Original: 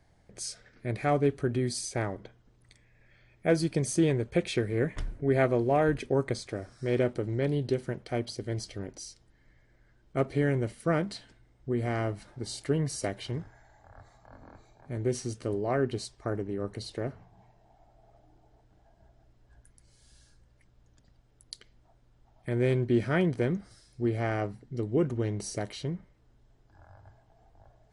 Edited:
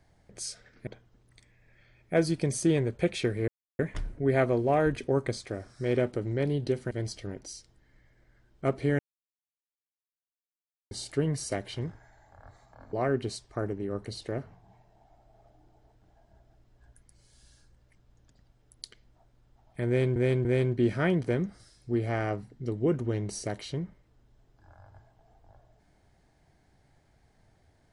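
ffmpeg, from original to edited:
ffmpeg -i in.wav -filter_complex "[0:a]asplit=9[link_01][link_02][link_03][link_04][link_05][link_06][link_07][link_08][link_09];[link_01]atrim=end=0.872[link_10];[link_02]atrim=start=2.198:end=4.81,asetpts=PTS-STARTPTS,afade=type=out:start_time=2.608:duration=0.004:curve=hsin,apad=pad_dur=0.31[link_11];[link_03]atrim=start=4.81:end=7.932,asetpts=PTS-STARTPTS,afade=type=in:duration=0.004:curve=hsin[link_12];[link_04]atrim=start=8.428:end=10.51,asetpts=PTS-STARTPTS,afade=type=out:start_time=2.078:duration=0.004:curve=hsin[link_13];[link_05]atrim=start=10.51:end=12.43,asetpts=PTS-STARTPTS,volume=0[link_14];[link_06]atrim=start=12.43:end=14.452,asetpts=PTS-STARTPTS,afade=type=in:duration=0.004:curve=hsin[link_15];[link_07]atrim=start=15.618:end=22.852[link_16];[link_08]atrim=start=22.558:end=22.852[link_17];[link_09]atrim=start=22.558[link_18];[link_11][link_12]concat=n=2:v=0:a=1[link_19];[link_10][link_19]acrossfade=duration=0.004:curve1=hsin:curve2=hsin[link_20];[link_13][link_14][link_15]concat=n=3:v=0:a=1[link_21];[link_20][link_21]acrossfade=duration=0.004:curve1=hsin:curve2=hsin[link_22];[link_22][link_16]acrossfade=duration=0.004:curve1=hsin:curve2=hsin[link_23];[link_23][link_17]acrossfade=duration=0.004:curve1=hsin:curve2=hsin[link_24];[link_24][link_18]acrossfade=duration=0.004:curve1=hsin:curve2=hsin" out.wav

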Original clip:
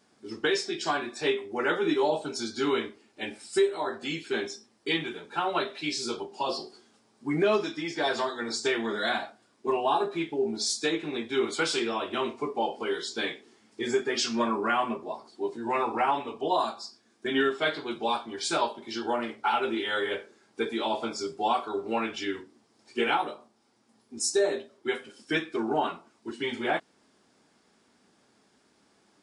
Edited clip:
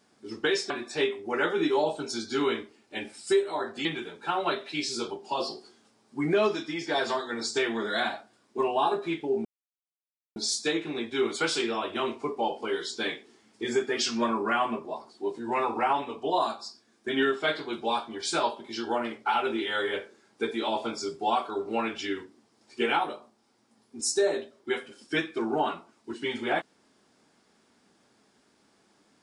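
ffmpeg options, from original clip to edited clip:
ffmpeg -i in.wav -filter_complex "[0:a]asplit=4[link_01][link_02][link_03][link_04];[link_01]atrim=end=0.702[link_05];[link_02]atrim=start=0.958:end=4.112[link_06];[link_03]atrim=start=4.938:end=10.54,asetpts=PTS-STARTPTS,afade=type=out:start_time=5.598:duration=0.004:curve=hsin,apad=pad_dur=0.91[link_07];[link_04]atrim=start=10.54,asetpts=PTS-STARTPTS,afade=type=in:duration=0.004:curve=hsin[link_08];[link_05][link_06]acrossfade=duration=0.004:curve1=hsin:curve2=hsin[link_09];[link_07][link_08]concat=n=2:v=0:a=1[link_10];[link_09][link_10]acrossfade=duration=0.004:curve1=hsin:curve2=hsin" out.wav

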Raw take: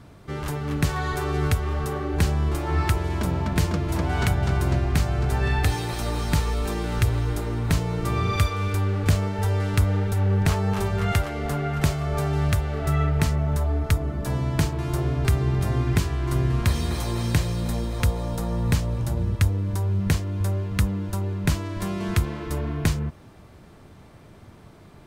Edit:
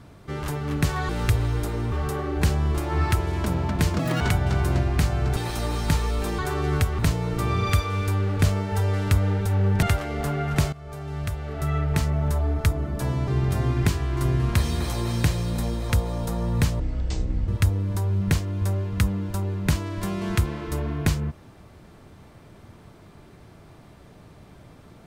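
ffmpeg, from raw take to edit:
ffmpeg -i in.wav -filter_complex "[0:a]asplit=13[link_01][link_02][link_03][link_04][link_05][link_06][link_07][link_08][link_09][link_10][link_11][link_12][link_13];[link_01]atrim=end=1.092[link_14];[link_02]atrim=start=6.818:end=7.652[link_15];[link_03]atrim=start=1.688:end=3.764[link_16];[link_04]atrim=start=3.76:end=4.17,asetpts=PTS-STARTPTS,asetrate=83790,aresample=44100,atrim=end_sample=9516,asetpts=PTS-STARTPTS[link_17];[link_05]atrim=start=4.166:end=5.332[link_18];[link_06]atrim=start=5.798:end=6.822[link_19];[link_07]atrim=start=1.088:end=1.692[link_20];[link_08]atrim=start=7.648:end=10.492[link_21];[link_09]atrim=start=11.078:end=11.98,asetpts=PTS-STARTPTS,afade=type=out:start_time=0.898:duration=0.004:curve=hsin:silence=0.133352[link_22];[link_10]atrim=start=11.98:end=14.532,asetpts=PTS-STARTPTS,afade=type=in:duration=1.48:silence=0.133352[link_23];[link_11]atrim=start=15.378:end=18.904[link_24];[link_12]atrim=start=18.9:end=19.27,asetpts=PTS-STARTPTS,asetrate=23814,aresample=44100[link_25];[link_13]atrim=start=19.266[link_26];[link_14][link_15]acrossfade=duration=0.004:curve1=hsin:curve2=hsin[link_27];[link_27][link_16]acrossfade=duration=0.004:curve1=hsin:curve2=hsin[link_28];[link_28][link_17]acrossfade=duration=0.004:curve1=hsin:curve2=hsin[link_29];[link_29][link_18]acrossfade=duration=0.004:curve1=hsin:curve2=hsin[link_30];[link_30][link_19]acrossfade=duration=0.004:curve1=hsin:curve2=hsin[link_31];[link_31][link_20]acrossfade=duration=0.004:curve1=hsin:curve2=hsin[link_32];[link_32][link_21]acrossfade=duration=0.004:curve1=hsin:curve2=hsin[link_33];[link_22][link_23]concat=n=2:v=0:a=1[link_34];[link_33][link_34]acrossfade=duration=0.004:curve1=hsin:curve2=hsin[link_35];[link_35][link_24]acrossfade=duration=0.004:curve1=hsin:curve2=hsin[link_36];[link_36][link_25]acrossfade=duration=0.004:curve1=hsin:curve2=hsin[link_37];[link_37][link_26]acrossfade=duration=0.004:curve1=hsin:curve2=hsin" out.wav

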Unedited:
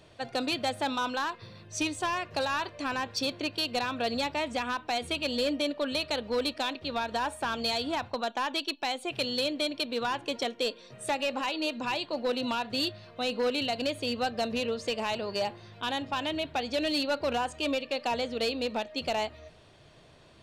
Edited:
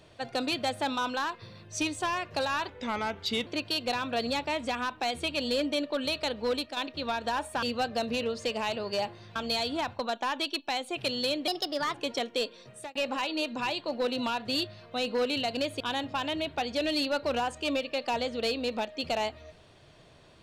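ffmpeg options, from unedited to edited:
ffmpeg -i in.wav -filter_complex "[0:a]asplit=10[link_01][link_02][link_03][link_04][link_05][link_06][link_07][link_08][link_09][link_10];[link_01]atrim=end=2.684[link_11];[link_02]atrim=start=2.68:end=3.34,asetpts=PTS-STARTPTS,asetrate=37044,aresample=44100[link_12];[link_03]atrim=start=3.336:end=6.64,asetpts=PTS-STARTPTS,afade=type=out:start_time=3.054:duration=0.25:silence=0.398107[link_13];[link_04]atrim=start=6.64:end=7.502,asetpts=PTS-STARTPTS,afade=type=in:duration=0.004:curve=hsin:silence=0.398107[link_14];[link_05]atrim=start=14.048:end=15.782[link_15];[link_06]atrim=start=7.498:end=9.624[link_16];[link_07]atrim=start=9.62:end=10.19,asetpts=PTS-STARTPTS,asetrate=53802,aresample=44100,atrim=end_sample=20604,asetpts=PTS-STARTPTS[link_17];[link_08]atrim=start=10.186:end=11.2,asetpts=PTS-STARTPTS,afade=type=out:start_time=0.684:duration=0.33[link_18];[link_09]atrim=start=11.2:end=14.052,asetpts=PTS-STARTPTS,afade=type=in:duration=0.004:curve=hsin[link_19];[link_10]atrim=start=15.778[link_20];[link_11][link_12]acrossfade=duration=0.004:curve1=hsin:curve2=hsin[link_21];[link_13][link_14]concat=n=2:v=0:a=1[link_22];[link_21][link_22]acrossfade=duration=0.004:curve1=hsin:curve2=hsin[link_23];[link_23][link_15]acrossfade=duration=0.004:curve1=hsin:curve2=hsin[link_24];[link_24][link_16]acrossfade=duration=0.004:curve1=hsin:curve2=hsin[link_25];[link_25][link_17]acrossfade=duration=0.004:curve1=hsin:curve2=hsin[link_26];[link_18][link_19]concat=n=2:v=0:a=1[link_27];[link_26][link_27]acrossfade=duration=0.004:curve1=hsin:curve2=hsin[link_28];[link_28][link_20]acrossfade=duration=0.004:curve1=hsin:curve2=hsin" out.wav

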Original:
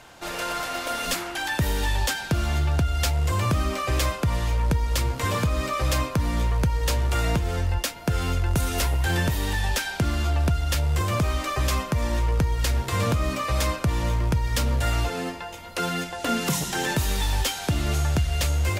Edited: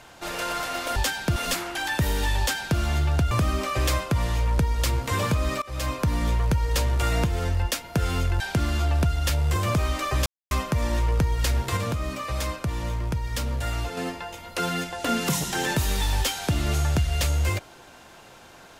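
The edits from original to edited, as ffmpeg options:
ffmpeg -i in.wav -filter_complex "[0:a]asplit=9[link_01][link_02][link_03][link_04][link_05][link_06][link_07][link_08][link_09];[link_01]atrim=end=0.962[link_10];[link_02]atrim=start=1.988:end=2.392[link_11];[link_03]atrim=start=0.958:end=2.912[link_12];[link_04]atrim=start=3.428:end=5.74,asetpts=PTS-STARTPTS,afade=type=out:start_time=2.308:duration=0.004:curve=hsin:silence=0.0749894[link_13];[link_05]atrim=start=5.74:end=8.522,asetpts=PTS-STARTPTS,afade=type=in:duration=0.39:silence=0.0749894[link_14];[link_06]atrim=start=9.848:end=11.71,asetpts=PTS-STARTPTS,afade=type=out:start_time=1.858:duration=0.004:curve=hsin,apad=pad_dur=0.25[link_15];[link_07]atrim=start=11.71:end=12.972,asetpts=PTS-STARTPTS,afade=type=in:duration=0.004:curve=hsin[link_16];[link_08]atrim=start=12.968:end=15.172,asetpts=PTS-STARTPTS,volume=-4.5dB[link_17];[link_09]atrim=start=15.168[link_18];[link_10][link_11]acrossfade=duration=0.004:curve1=hsin:curve2=hsin[link_19];[link_19][link_12]acrossfade=duration=0.004:curve1=hsin:curve2=hsin[link_20];[link_13][link_14]concat=n=2:v=0:a=1[link_21];[link_20][link_21]acrossfade=duration=0.004:curve1=hsin:curve2=hsin[link_22];[link_15][link_16]concat=n=2:v=0:a=1[link_23];[link_22][link_23]acrossfade=duration=0.004:curve1=hsin:curve2=hsin[link_24];[link_24][link_17]acrossfade=duration=0.004:curve1=hsin:curve2=hsin[link_25];[link_25][link_18]acrossfade=duration=0.004:curve1=hsin:curve2=hsin" out.wav

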